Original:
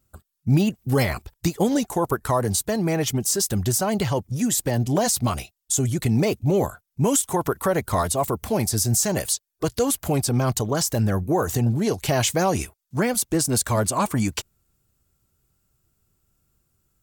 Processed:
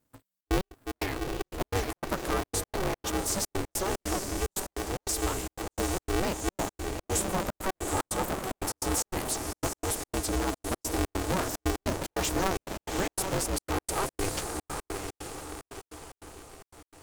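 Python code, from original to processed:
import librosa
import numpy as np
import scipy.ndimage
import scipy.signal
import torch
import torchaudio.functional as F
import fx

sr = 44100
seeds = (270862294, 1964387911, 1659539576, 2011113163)

y = fx.echo_diffused(x, sr, ms=792, feedback_pct=47, wet_db=-4.5)
y = fx.step_gate(y, sr, bpm=148, pattern='xxxx.x.xx.', floor_db=-60.0, edge_ms=4.5)
y = fx.low_shelf(y, sr, hz=160.0, db=-8.0, at=(4.62, 5.03))
y = y * np.sign(np.sin(2.0 * np.pi * 190.0 * np.arange(len(y)) / sr))
y = y * 10.0 ** (-8.5 / 20.0)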